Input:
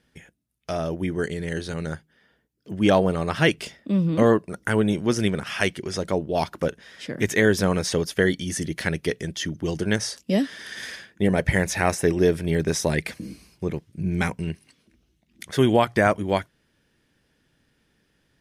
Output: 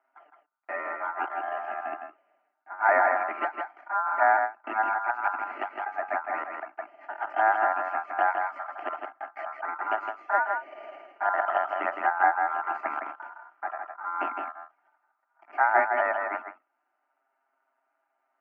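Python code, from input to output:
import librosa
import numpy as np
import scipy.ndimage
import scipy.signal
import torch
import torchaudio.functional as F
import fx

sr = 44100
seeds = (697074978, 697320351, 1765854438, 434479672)

p1 = np.where(x < 0.0, 10.0 ** (-12.0 / 20.0) * x, x)
p2 = fx.rider(p1, sr, range_db=4, speed_s=2.0)
p3 = p1 + (p2 * librosa.db_to_amplitude(1.0))
p4 = fx.env_flanger(p3, sr, rest_ms=7.6, full_db=-11.0)
p5 = p4 * np.sin(2.0 * np.pi * 1200.0 * np.arange(len(p4)) / sr)
p6 = fx.cabinet(p5, sr, low_hz=330.0, low_slope=24, high_hz=2000.0, hz=(400.0, 650.0, 1700.0), db=(-7, 4, -7))
p7 = fx.fixed_phaser(p6, sr, hz=750.0, stages=8)
p8 = p7 + fx.echo_single(p7, sr, ms=161, db=-5.0, dry=0)
y = fx.end_taper(p8, sr, db_per_s=260.0)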